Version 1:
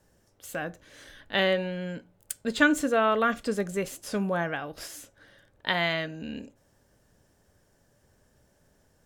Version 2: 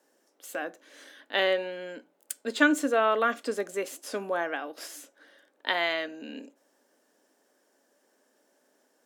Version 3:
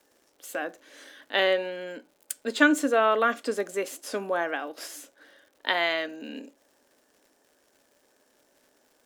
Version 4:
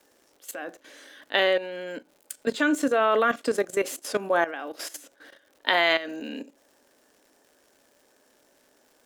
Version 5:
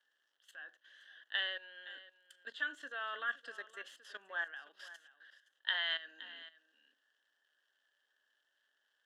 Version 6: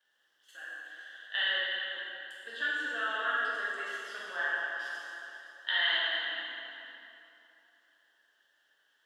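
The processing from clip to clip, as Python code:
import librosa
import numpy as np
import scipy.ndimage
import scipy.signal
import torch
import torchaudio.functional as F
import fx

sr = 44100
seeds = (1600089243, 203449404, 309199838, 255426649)

y1 = scipy.signal.sosfilt(scipy.signal.cheby1(4, 1.0, 260.0, 'highpass', fs=sr, output='sos'), x)
y2 = fx.dmg_crackle(y1, sr, seeds[0], per_s=190.0, level_db=-53.0)
y2 = F.gain(torch.from_numpy(y2), 2.0).numpy()
y3 = fx.level_steps(y2, sr, step_db=14)
y3 = F.gain(torch.from_numpy(y3), 7.0).numpy()
y4 = fx.double_bandpass(y3, sr, hz=2300.0, octaves=0.84)
y4 = y4 + 10.0 ** (-16.5 / 20.0) * np.pad(y4, (int(518 * sr / 1000.0), 0))[:len(y4)]
y4 = F.gain(torch.from_numpy(y4), -6.0).numpy()
y5 = fx.rev_plate(y4, sr, seeds[1], rt60_s=3.0, hf_ratio=0.7, predelay_ms=0, drr_db=-8.5)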